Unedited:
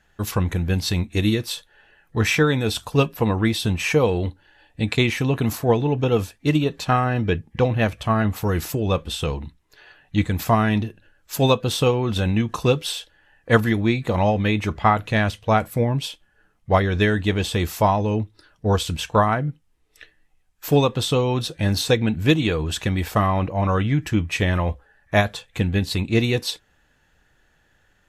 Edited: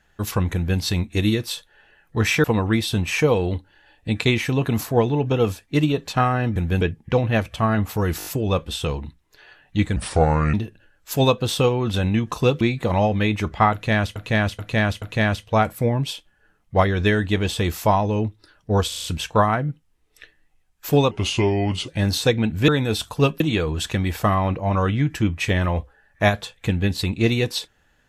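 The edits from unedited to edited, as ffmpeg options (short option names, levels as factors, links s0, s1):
-filter_complex "[0:a]asplit=22[s0][s1][s2][s3][s4][s5][s6][s7][s8][s9][s10][s11][s12][s13][s14][s15][s16][s17][s18][s19][s20][s21];[s0]atrim=end=2.442[s22];[s1]atrim=start=3.158:end=7.282[s23];[s2]atrim=start=0.538:end=0.792[s24];[s3]atrim=start=7.278:end=8.672[s25];[s4]atrim=start=8.648:end=8.672[s26];[s5]atrim=start=8.648:end=8.672[s27];[s6]atrim=start=8.648:end=8.672[s28];[s7]atrim=start=8.648:end=10.354[s29];[s8]atrim=start=10.35:end=10.76,asetpts=PTS-STARTPTS,asetrate=31311,aresample=44100,atrim=end_sample=25466,asetpts=PTS-STARTPTS[s30];[s9]atrim=start=10.756:end=12.832[s31];[s10]atrim=start=13.848:end=15.402[s32];[s11]atrim=start=14.968:end=15.402[s33];[s12]atrim=start=14.968:end=15.402[s34];[s13]atrim=start=14.968:end=18.872[s35];[s14]atrim=start=18.828:end=18.872[s36];[s15]atrim=start=18.828:end=18.872[s37];[s16]atrim=start=18.828:end=18.872[s38];[s17]atrim=start=18.828:end=20.904[s39];[s18]atrim=start=20.9:end=21.52,asetpts=PTS-STARTPTS,asetrate=35280,aresample=44100[s40];[s19]atrim=start=21.516:end=22.322[s41];[s20]atrim=start=2.438:end=3.162[s42];[s21]atrim=start=22.318[s43];[s22][s23]acrossfade=d=0.004:c1=hsin:c2=hsin[s44];[s44][s24]acrossfade=d=0.004:c1=hsin:c2=hsin[s45];[s45][s25]acrossfade=d=0.004:c1=hsin:c2=hsin[s46];[s46][s26]acrossfade=d=0.004:c1=hsin:c2=hsin[s47];[s47][s27]acrossfade=d=0.004:c1=hsin:c2=hsin[s48];[s48][s28]acrossfade=d=0.004:c1=hsin:c2=hsin[s49];[s49][s29]acrossfade=d=0.004:c1=hsin:c2=hsin[s50];[s50][s30]acrossfade=d=0.004:c1=hsin:c2=hsin[s51];[s51][s31]acrossfade=d=0.004:c1=hsin:c2=hsin[s52];[s52][s32]acrossfade=d=0.004:c1=hsin:c2=hsin[s53];[s53][s33]acrossfade=d=0.004:c1=hsin:c2=hsin[s54];[s54][s34]acrossfade=d=0.004:c1=hsin:c2=hsin[s55];[s55][s35]acrossfade=d=0.004:c1=hsin:c2=hsin[s56];[s56][s36]acrossfade=d=0.004:c1=hsin:c2=hsin[s57];[s57][s37]acrossfade=d=0.004:c1=hsin:c2=hsin[s58];[s58][s38]acrossfade=d=0.004:c1=hsin:c2=hsin[s59];[s59][s39]acrossfade=d=0.004:c1=hsin:c2=hsin[s60];[s60][s40]acrossfade=d=0.004:c1=hsin:c2=hsin[s61];[s61][s41]acrossfade=d=0.004:c1=hsin:c2=hsin[s62];[s62][s42]acrossfade=d=0.004:c1=hsin:c2=hsin[s63];[s63][s43]acrossfade=d=0.004:c1=hsin:c2=hsin"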